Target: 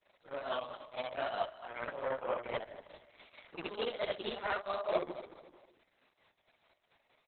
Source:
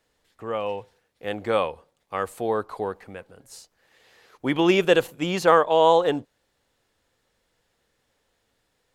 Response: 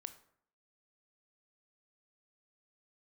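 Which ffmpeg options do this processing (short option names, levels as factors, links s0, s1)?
-filter_complex "[0:a]afftfilt=real='re':imag='-im':win_size=8192:overlap=0.75,highpass=200,highshelf=f=10000:g=-10.5,areverse,acompressor=threshold=0.0141:ratio=10,areverse,tremolo=f=3.7:d=0.57,aphaser=in_gain=1:out_gain=1:delay=1.6:decay=0.23:speed=0.3:type=sinusoidal,asplit=2[s0][s1];[s1]acrusher=samples=29:mix=1:aa=0.000001,volume=0.266[s2];[s0][s2]amix=inputs=2:normalize=0,asetrate=54243,aresample=44100,equalizer=f=270:t=o:w=1.3:g=-6,aecho=1:1:226|452|678:0.224|0.0784|0.0274,volume=2.66" -ar 48000 -c:a libopus -b:a 6k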